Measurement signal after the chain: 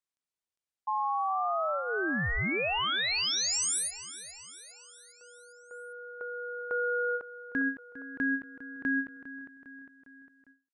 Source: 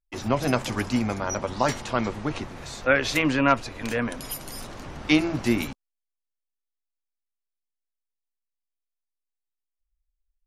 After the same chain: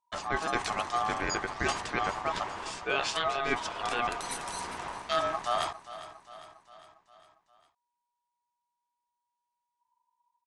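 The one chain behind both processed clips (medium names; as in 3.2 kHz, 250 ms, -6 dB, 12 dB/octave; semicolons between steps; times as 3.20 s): dynamic bell 440 Hz, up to -7 dB, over -43 dBFS, Q 6; ring modulator 960 Hz; reverse; compression, threshold -28 dBFS; reverse; feedback delay 404 ms, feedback 56%, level -15 dB; resampled via 22.05 kHz; endings held to a fixed fall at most 210 dB/s; trim +2.5 dB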